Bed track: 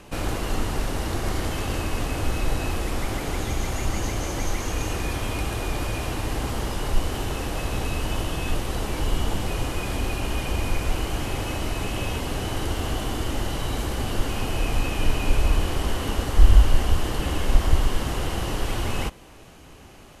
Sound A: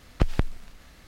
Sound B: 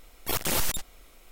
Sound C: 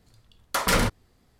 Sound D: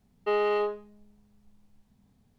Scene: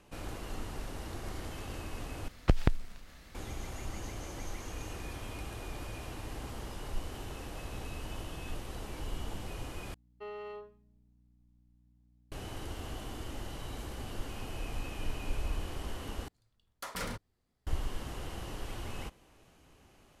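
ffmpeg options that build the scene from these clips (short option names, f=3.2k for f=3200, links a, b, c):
-filter_complex "[0:a]volume=-14.5dB[a];[4:a]aeval=exprs='val(0)+0.00447*(sin(2*PI*60*n/s)+sin(2*PI*2*60*n/s)/2+sin(2*PI*3*60*n/s)/3+sin(2*PI*4*60*n/s)/4+sin(2*PI*5*60*n/s)/5)':c=same[b];[a]asplit=4[c][d][e][f];[c]atrim=end=2.284[g];[1:a]atrim=end=1.07,asetpts=PTS-STARTPTS,volume=-2.5dB[h];[d]atrim=start=3.346:end=9.944[i];[b]atrim=end=2.38,asetpts=PTS-STARTPTS,volume=-17.5dB[j];[e]atrim=start=12.316:end=16.284[k];[3:a]atrim=end=1.39,asetpts=PTS-STARTPTS,volume=-16.5dB[l];[f]atrim=start=17.666[m];[g][h]acrossfade=d=0.004:c1=hsin:c2=hsin[n];[n][i]acrossfade=d=0.004:c1=hsin:c2=hsin[o];[o][j]acrossfade=d=0.004:c1=hsin:c2=hsin[p];[p][k]acrossfade=d=0.004:c1=hsin:c2=hsin[q];[q][l]acrossfade=d=0.004:c1=hsin:c2=hsin[r];[r][m]acrossfade=d=0.004:c1=hsin:c2=hsin"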